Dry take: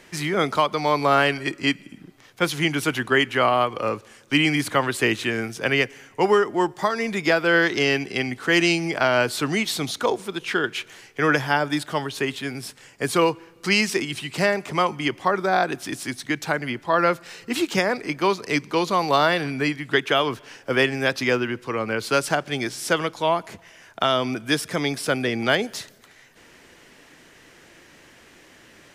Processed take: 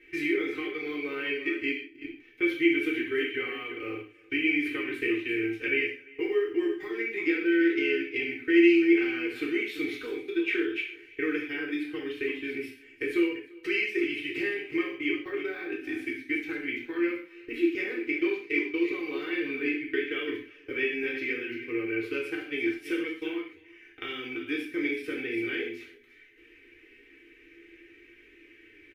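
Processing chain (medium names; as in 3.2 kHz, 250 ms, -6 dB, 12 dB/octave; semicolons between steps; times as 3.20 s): comb 3.9 ms, depth 70%; small resonant body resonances 240/410/780 Hz, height 10 dB, ringing for 85 ms; in parallel at -11 dB: short-mantissa float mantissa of 2-bit; on the sum: compression 3:1, threshold -37 dBFS, peak gain reduction 22 dB; multi-tap echo 45/71/341 ms -18/-14/-10.5 dB; gate -37 dBFS, range -14 dB; FFT filter 110 Hz 0 dB, 210 Hz -30 dB, 340 Hz +12 dB, 550 Hz -18 dB, 810 Hz -27 dB, 2.3 kHz +8 dB, 4.3 kHz -14 dB, 7.8 kHz -22 dB, 14 kHz -10 dB; gated-style reverb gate 170 ms falling, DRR -2.5 dB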